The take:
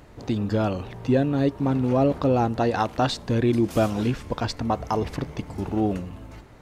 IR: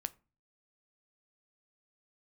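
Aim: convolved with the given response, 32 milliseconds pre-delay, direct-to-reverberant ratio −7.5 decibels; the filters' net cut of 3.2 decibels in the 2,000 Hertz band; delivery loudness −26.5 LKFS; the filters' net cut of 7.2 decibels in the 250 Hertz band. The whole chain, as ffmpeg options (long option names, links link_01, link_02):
-filter_complex "[0:a]equalizer=frequency=250:width_type=o:gain=-9,equalizer=frequency=2000:width_type=o:gain=-4.5,asplit=2[link_01][link_02];[1:a]atrim=start_sample=2205,adelay=32[link_03];[link_02][link_03]afir=irnorm=-1:irlink=0,volume=8.5dB[link_04];[link_01][link_04]amix=inputs=2:normalize=0,volume=-7dB"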